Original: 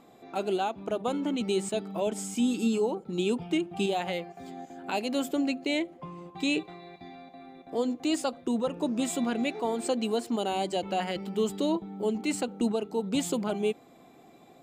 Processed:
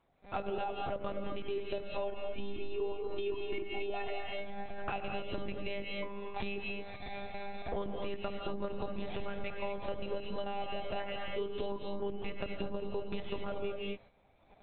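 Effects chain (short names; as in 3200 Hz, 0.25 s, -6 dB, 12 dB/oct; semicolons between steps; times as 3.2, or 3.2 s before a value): recorder AGC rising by 9.3 dB/s; gate -44 dBFS, range -17 dB; tilt +2.5 dB/oct; low-pass opened by the level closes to 2800 Hz, open at -27 dBFS; monotone LPC vocoder at 8 kHz 200 Hz; 1.97–4.29 comb 2.8 ms, depth 68%; non-linear reverb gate 0.26 s rising, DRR 3 dB; compressor 6:1, threshold -33 dBFS, peak gain reduction 12.5 dB; treble ducked by the level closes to 2100 Hz, closed at -33 dBFS; gain +1 dB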